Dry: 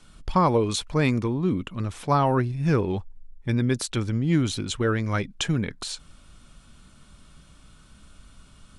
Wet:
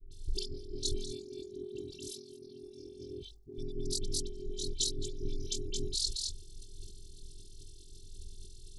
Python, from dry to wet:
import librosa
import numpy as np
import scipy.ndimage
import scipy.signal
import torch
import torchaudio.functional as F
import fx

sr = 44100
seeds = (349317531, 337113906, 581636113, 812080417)

y = fx.peak_eq(x, sr, hz=7800.0, db=-7.0, octaves=1.3)
y = y + 10.0 ** (-3.5 / 20.0) * np.pad(y, (int(222 * sr / 1000.0), 0))[:len(y)]
y = fx.over_compress(y, sr, threshold_db=-28.0, ratio=-1.0)
y = scipy.signal.sosfilt(scipy.signal.cheby2(4, 60, [630.0, 2000.0], 'bandstop', fs=sr, output='sos'), y)
y = fx.peak_eq(y, sr, hz=3100.0, db=12.5, octaves=2.4)
y = fx.robotise(y, sr, hz=389.0)
y = fx.highpass(y, sr, hz=290.0, slope=6, at=(1.12, 3.58))
y = y * np.sin(2.0 * np.pi * 21.0 * np.arange(len(y)) / sr)
y = fx.dispersion(y, sr, late='highs', ms=115.0, hz=1200.0)
y = fx.sustainer(y, sr, db_per_s=75.0)